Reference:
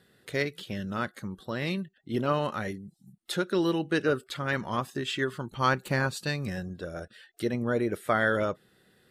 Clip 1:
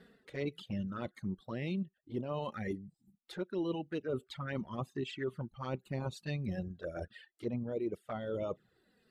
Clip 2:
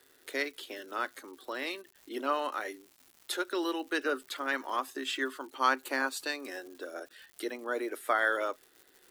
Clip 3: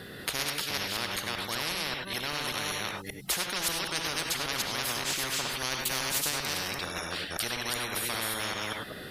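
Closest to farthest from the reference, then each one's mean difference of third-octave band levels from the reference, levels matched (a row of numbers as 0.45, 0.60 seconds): 1, 2, 3; 6.0, 9.0, 16.5 decibels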